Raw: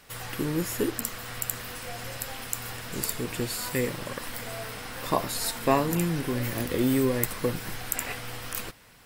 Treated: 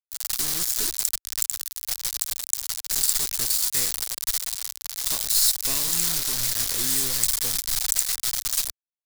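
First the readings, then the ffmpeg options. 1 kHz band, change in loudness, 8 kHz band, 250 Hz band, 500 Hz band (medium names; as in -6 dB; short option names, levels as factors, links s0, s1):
-9.5 dB, +7.0 dB, +13.0 dB, -14.5 dB, -14.5 dB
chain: -filter_complex "[0:a]lowpass=f=8500:w=0.5412,lowpass=f=8500:w=1.3066,lowshelf=f=61:g=5.5,acrossover=split=420|1600[s0][s1][s2];[s1]acompressor=threshold=0.00794:ratio=12[s3];[s0][s3][s2]amix=inputs=3:normalize=0,acrusher=bits=4:mix=0:aa=0.000001,equalizer=f=230:w=0.43:g=-13.5,aexciter=amount=4.7:drive=4:freq=3800,volume=0.841"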